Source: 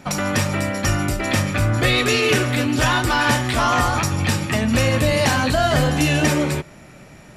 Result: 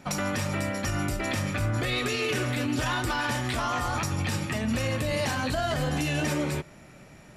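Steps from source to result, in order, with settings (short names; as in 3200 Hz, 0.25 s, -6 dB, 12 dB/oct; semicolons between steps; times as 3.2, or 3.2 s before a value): limiter -12.5 dBFS, peak gain reduction 7.5 dB; gain -6.5 dB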